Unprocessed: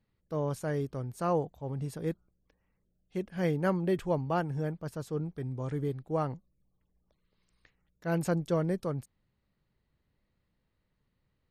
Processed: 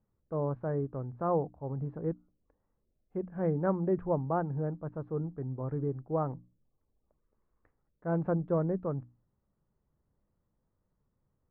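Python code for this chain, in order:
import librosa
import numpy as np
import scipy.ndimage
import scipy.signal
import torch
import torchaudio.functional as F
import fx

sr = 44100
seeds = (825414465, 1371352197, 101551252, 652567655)

y = scipy.signal.sosfilt(scipy.signal.butter(4, 1300.0, 'lowpass', fs=sr, output='sos'), x)
y = fx.hum_notches(y, sr, base_hz=60, count=5)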